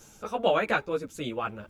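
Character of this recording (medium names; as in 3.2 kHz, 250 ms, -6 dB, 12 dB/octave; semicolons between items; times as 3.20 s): tremolo saw down 4.4 Hz, depth 35%; a shimmering, thickened sound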